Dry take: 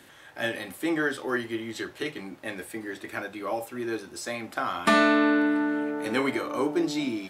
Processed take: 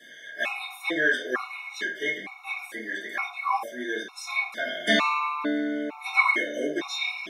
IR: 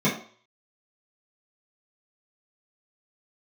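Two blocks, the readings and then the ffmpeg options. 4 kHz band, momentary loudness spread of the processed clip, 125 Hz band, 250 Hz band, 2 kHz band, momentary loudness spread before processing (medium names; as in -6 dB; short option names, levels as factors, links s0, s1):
+4.5 dB, 11 LU, no reading, -6.5 dB, +4.0 dB, 15 LU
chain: -filter_complex "[0:a]highpass=1000[s0];[1:a]atrim=start_sample=2205,afade=t=out:st=0.44:d=0.01,atrim=end_sample=19845[s1];[s0][s1]afir=irnorm=-1:irlink=0,afftfilt=real='re*gt(sin(2*PI*1.1*pts/sr)*(1-2*mod(floor(b*sr/1024/730),2)),0)':imag='im*gt(sin(2*PI*1.1*pts/sr)*(1-2*mod(floor(b*sr/1024/730),2)),0)':win_size=1024:overlap=0.75,volume=0.708"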